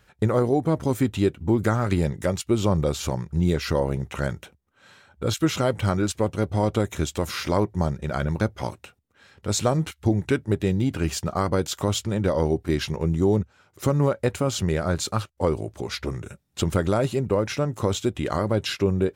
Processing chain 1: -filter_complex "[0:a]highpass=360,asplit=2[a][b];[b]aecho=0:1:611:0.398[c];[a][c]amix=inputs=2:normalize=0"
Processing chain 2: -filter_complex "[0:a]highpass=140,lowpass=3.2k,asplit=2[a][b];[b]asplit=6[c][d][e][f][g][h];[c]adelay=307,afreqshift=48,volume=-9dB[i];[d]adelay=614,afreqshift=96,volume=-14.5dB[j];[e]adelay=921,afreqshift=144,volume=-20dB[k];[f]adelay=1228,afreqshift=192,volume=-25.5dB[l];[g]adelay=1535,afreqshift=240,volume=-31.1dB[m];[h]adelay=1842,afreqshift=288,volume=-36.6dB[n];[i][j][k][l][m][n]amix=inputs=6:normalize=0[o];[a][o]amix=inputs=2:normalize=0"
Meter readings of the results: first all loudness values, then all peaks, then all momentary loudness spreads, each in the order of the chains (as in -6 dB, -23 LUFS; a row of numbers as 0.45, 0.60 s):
-28.0, -25.5 LUFS; -9.0, -7.0 dBFS; 7, 8 LU